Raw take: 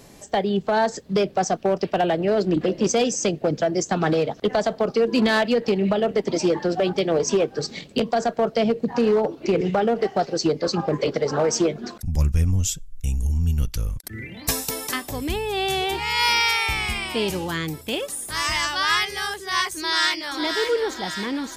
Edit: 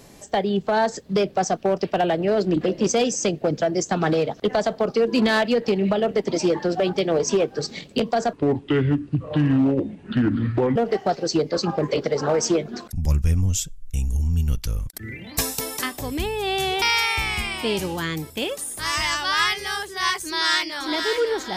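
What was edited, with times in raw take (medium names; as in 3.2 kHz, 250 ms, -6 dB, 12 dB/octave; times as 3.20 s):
8.33–9.86 s: speed 63%
15.92–16.33 s: delete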